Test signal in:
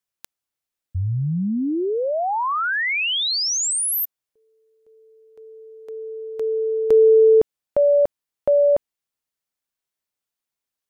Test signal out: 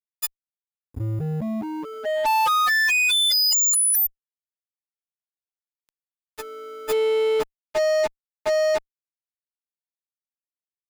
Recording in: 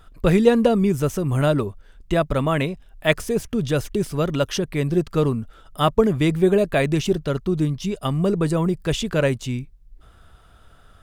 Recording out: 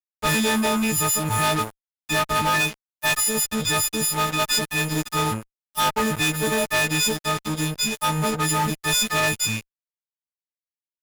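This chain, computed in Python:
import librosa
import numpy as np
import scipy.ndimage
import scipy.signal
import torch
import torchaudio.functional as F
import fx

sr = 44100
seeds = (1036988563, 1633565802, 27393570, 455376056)

y = fx.freq_snap(x, sr, grid_st=6)
y = fx.low_shelf_res(y, sr, hz=660.0, db=-6.0, q=3.0)
y = fx.fuzz(y, sr, gain_db=26.0, gate_db=-33.0)
y = F.gain(torch.from_numpy(y), -5.0).numpy()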